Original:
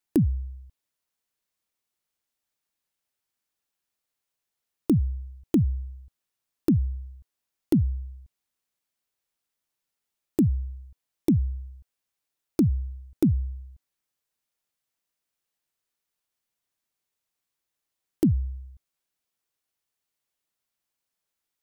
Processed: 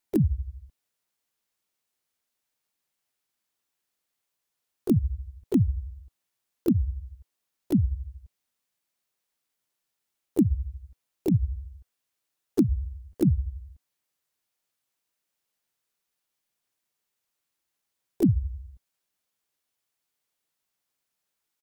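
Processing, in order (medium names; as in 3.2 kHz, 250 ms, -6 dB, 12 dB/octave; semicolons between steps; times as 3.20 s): bass shelf 64 Hz -6 dB; in parallel at +2.5 dB: peak limiter -21 dBFS, peak gain reduction 9 dB; on the sum: harmony voices -4 st -8 dB, +3 st -7 dB, +5 st -11 dB; trim -6.5 dB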